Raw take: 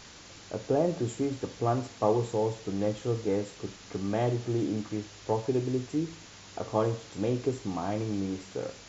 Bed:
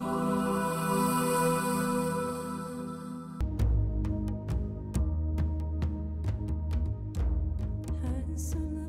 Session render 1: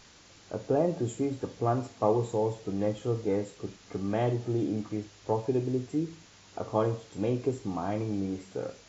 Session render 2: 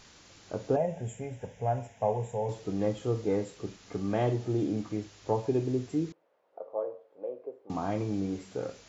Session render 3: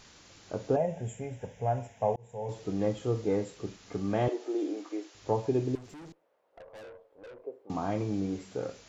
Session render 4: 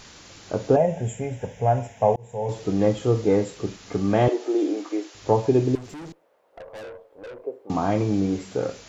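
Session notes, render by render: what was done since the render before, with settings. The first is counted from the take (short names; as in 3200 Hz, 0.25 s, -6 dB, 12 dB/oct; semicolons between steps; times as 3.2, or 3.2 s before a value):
noise print and reduce 6 dB
0.76–2.49 fixed phaser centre 1200 Hz, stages 6; 6.12–7.7 ladder band-pass 590 Hz, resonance 65%
2.16–2.62 fade in; 4.28–5.15 elliptic high-pass 310 Hz, stop band 60 dB; 5.75–7.45 tube stage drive 45 dB, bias 0.4
gain +9 dB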